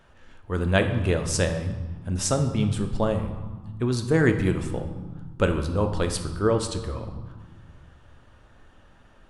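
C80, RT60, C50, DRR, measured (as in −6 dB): 10.5 dB, 1.5 s, 8.5 dB, 5.5 dB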